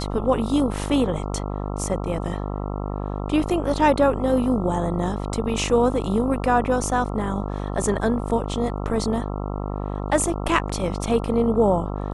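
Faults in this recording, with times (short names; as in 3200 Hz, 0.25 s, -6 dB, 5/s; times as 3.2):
buzz 50 Hz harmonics 27 -28 dBFS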